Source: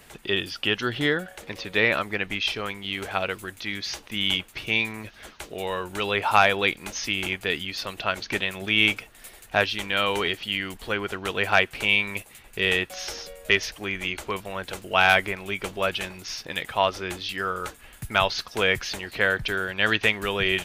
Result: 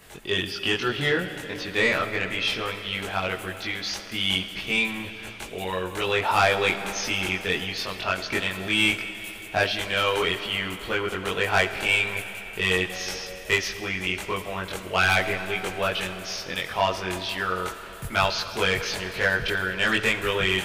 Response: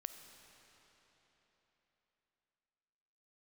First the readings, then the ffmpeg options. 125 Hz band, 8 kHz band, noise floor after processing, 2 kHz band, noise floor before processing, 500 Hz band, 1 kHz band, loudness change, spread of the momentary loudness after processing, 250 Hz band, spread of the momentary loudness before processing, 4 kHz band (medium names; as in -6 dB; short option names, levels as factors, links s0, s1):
+2.0 dB, +2.5 dB, -39 dBFS, 0.0 dB, -50 dBFS, +0.5 dB, -0.5 dB, 0.0 dB, 9 LU, +0.5 dB, 12 LU, 0.0 dB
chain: -filter_complex "[0:a]asoftclip=type=tanh:threshold=0.224,asplit=2[s0][s1];[1:a]atrim=start_sample=2205,adelay=22[s2];[s1][s2]afir=irnorm=-1:irlink=0,volume=1.78[s3];[s0][s3]amix=inputs=2:normalize=0,volume=0.794"